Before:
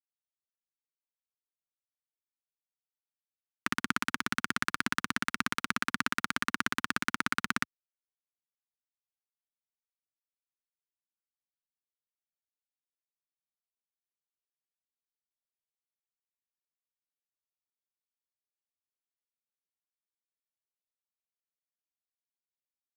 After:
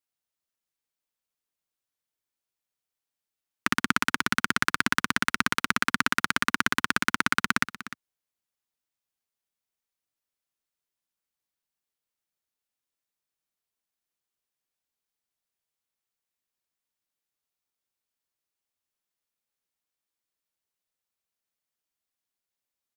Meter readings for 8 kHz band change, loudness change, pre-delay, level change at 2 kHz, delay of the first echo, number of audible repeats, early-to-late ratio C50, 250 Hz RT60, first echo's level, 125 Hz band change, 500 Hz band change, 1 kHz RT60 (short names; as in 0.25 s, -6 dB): +6.5 dB, +6.5 dB, none, +7.0 dB, 0.302 s, 1, none, none, -15.0 dB, +6.0 dB, +7.0 dB, none